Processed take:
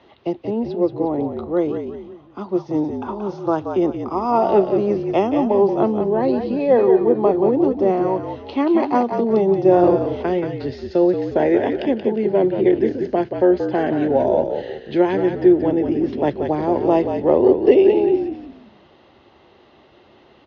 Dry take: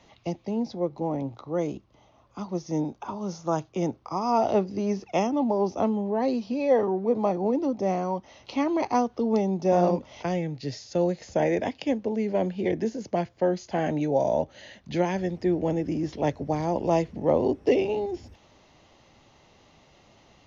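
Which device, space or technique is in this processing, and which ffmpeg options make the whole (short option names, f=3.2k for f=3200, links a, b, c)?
frequency-shifting delay pedal into a guitar cabinet: -filter_complex "[0:a]asplit=6[a][b][c][d][e][f];[b]adelay=179,afreqshift=-50,volume=-6.5dB[g];[c]adelay=358,afreqshift=-100,volume=-14.7dB[h];[d]adelay=537,afreqshift=-150,volume=-22.9dB[i];[e]adelay=716,afreqshift=-200,volume=-31dB[j];[f]adelay=895,afreqshift=-250,volume=-39.2dB[k];[a][g][h][i][j][k]amix=inputs=6:normalize=0,highpass=75,equalizer=f=110:t=q:w=4:g=-6,equalizer=f=170:t=q:w=4:g=-7,equalizer=f=370:t=q:w=4:g=9,equalizer=f=1.5k:t=q:w=4:g=3,equalizer=f=2.3k:t=q:w=4:g=-5,lowpass=f=3.8k:w=0.5412,lowpass=f=3.8k:w=1.3066,volume=5dB"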